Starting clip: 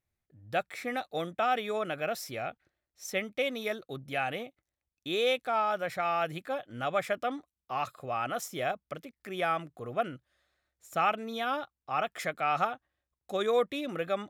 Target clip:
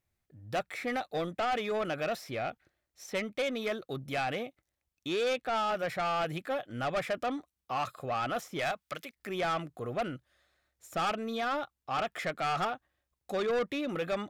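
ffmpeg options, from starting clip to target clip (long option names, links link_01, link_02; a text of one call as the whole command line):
ffmpeg -i in.wav -filter_complex "[0:a]asettb=1/sr,asplit=3[link_01][link_02][link_03];[link_01]atrim=end=8.594[link_04];[link_02]atrim=start=8.59:end=9.15,asetpts=PTS-STARTPTS,afade=type=in:duration=0.004:curve=qsin,afade=type=out:start_time=0.556:duration=0.004:curve=qsin,tiltshelf=frequency=820:gain=-8.5[link_05];[link_03]atrim=start=9.146[link_06];[link_04][link_05]acrossfade=duration=0.004:curve1=hsin:curve2=qsin[link_07];[link_07][link_06]acrossfade=duration=0.004:curve1=qsin:curve2=hsin,acrossover=split=3700[link_08][link_09];[link_09]acompressor=threshold=-54dB:ratio=6[link_10];[link_08][link_10]amix=inputs=2:normalize=0,asoftclip=type=tanh:threshold=-30dB,volume=3.5dB" out.wav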